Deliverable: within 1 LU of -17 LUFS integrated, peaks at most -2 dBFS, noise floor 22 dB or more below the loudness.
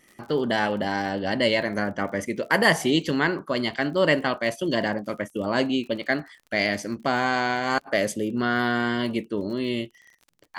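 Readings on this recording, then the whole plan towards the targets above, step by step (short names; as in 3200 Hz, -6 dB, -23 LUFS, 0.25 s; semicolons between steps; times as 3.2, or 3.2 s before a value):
ticks 41/s; loudness -25.0 LUFS; peak -5.5 dBFS; loudness target -17.0 LUFS
-> de-click; gain +8 dB; limiter -2 dBFS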